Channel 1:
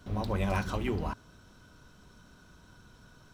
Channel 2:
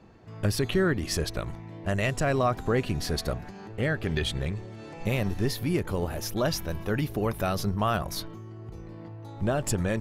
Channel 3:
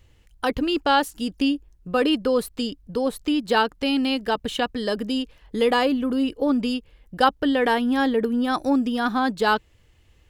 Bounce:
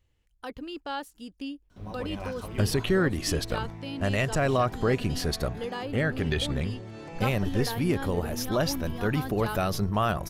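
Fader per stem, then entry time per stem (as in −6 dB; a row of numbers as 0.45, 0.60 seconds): −7.0, +0.5, −15.0 decibels; 1.70, 2.15, 0.00 seconds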